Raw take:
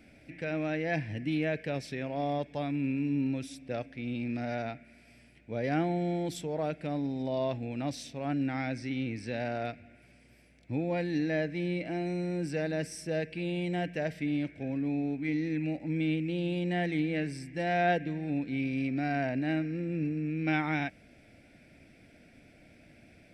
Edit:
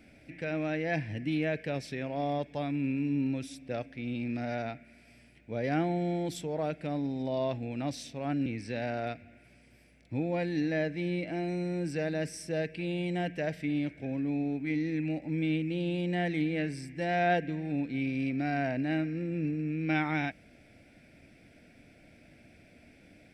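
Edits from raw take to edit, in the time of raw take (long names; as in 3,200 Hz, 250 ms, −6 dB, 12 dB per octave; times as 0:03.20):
0:08.46–0:09.04: remove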